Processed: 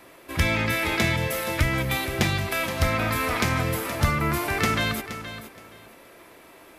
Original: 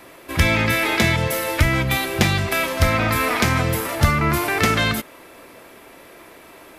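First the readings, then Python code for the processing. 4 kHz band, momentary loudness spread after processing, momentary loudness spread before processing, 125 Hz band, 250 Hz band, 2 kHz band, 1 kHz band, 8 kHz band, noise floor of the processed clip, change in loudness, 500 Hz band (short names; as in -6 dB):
-5.0 dB, 10 LU, 4 LU, -5.5 dB, -5.0 dB, -5.0 dB, -5.0 dB, -5.0 dB, -50 dBFS, -5.5 dB, -5.0 dB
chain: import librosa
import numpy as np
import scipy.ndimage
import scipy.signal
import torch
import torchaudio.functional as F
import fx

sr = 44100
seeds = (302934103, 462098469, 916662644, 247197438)

y = fx.echo_feedback(x, sr, ms=472, feedback_pct=20, wet_db=-12.0)
y = y * 10.0 ** (-5.5 / 20.0)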